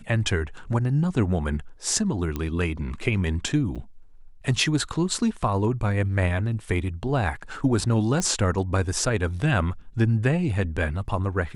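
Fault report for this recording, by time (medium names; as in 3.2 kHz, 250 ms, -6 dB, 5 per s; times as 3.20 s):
2.36 s: pop -15 dBFS
3.75–3.76 s: dropout 7 ms
8.20 s: pop -13 dBFS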